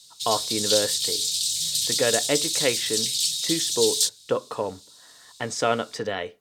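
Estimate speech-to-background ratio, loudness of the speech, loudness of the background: -4.5 dB, -27.5 LUFS, -23.0 LUFS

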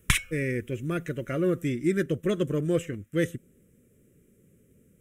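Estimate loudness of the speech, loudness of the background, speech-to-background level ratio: -29.0 LUFS, -27.0 LUFS, -2.0 dB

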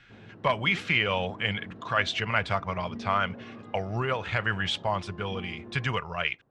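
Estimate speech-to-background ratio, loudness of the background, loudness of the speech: 17.5 dB, -46.0 LUFS, -28.5 LUFS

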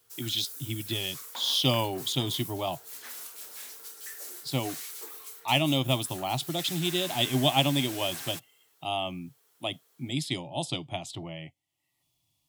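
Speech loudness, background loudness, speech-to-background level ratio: -29.5 LUFS, -39.0 LUFS, 9.5 dB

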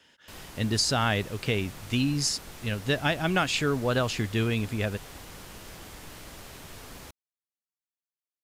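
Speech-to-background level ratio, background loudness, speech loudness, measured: 17.0 dB, -44.5 LUFS, -27.5 LUFS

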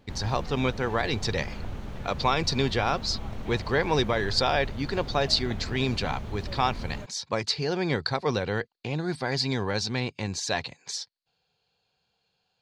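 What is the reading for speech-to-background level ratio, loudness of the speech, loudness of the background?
10.5 dB, -28.0 LUFS, -38.5 LUFS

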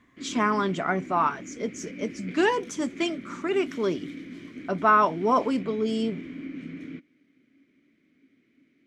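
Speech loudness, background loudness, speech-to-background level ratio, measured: -26.5 LUFS, -40.0 LUFS, 13.5 dB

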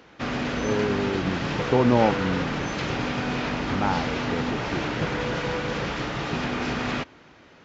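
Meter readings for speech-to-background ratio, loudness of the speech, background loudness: 1.0 dB, -27.0 LUFS, -28.0 LUFS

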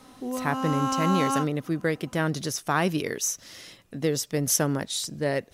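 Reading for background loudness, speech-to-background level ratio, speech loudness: -29.0 LUFS, 1.5 dB, -27.5 LUFS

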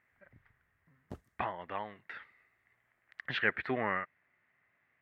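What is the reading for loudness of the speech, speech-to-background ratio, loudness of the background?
-36.0 LUFS, 16.5 dB, -52.5 LUFS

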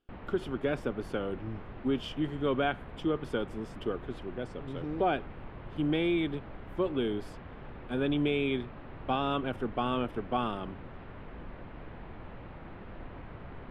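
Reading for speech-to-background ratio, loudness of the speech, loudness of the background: 14.0 dB, -33.0 LUFS, -47.0 LUFS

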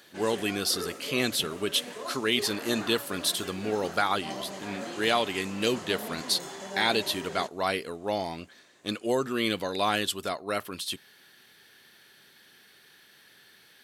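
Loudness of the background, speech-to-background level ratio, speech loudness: -39.5 LUFS, 10.5 dB, -29.0 LUFS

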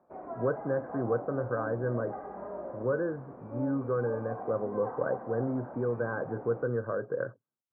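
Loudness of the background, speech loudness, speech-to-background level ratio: -42.0 LUFS, -33.0 LUFS, 9.0 dB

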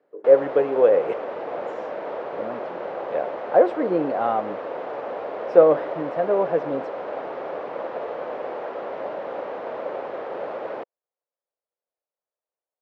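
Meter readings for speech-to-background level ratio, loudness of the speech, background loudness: 10.5 dB, -21.0 LUFS, -31.5 LUFS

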